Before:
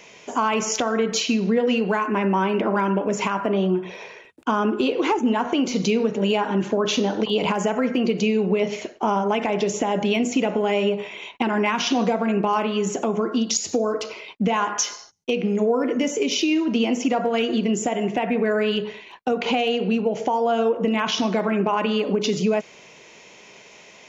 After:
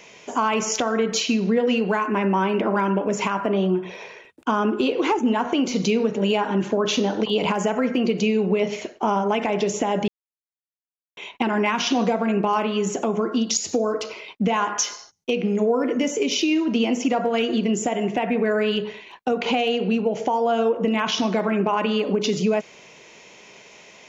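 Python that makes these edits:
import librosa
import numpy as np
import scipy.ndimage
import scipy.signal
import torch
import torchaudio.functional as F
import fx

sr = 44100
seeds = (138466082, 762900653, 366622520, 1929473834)

y = fx.edit(x, sr, fx.silence(start_s=10.08, length_s=1.09), tone=tone)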